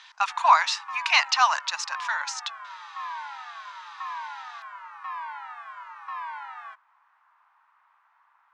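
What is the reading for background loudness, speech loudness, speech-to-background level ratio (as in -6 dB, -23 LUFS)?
-38.0 LUFS, -23.0 LUFS, 15.0 dB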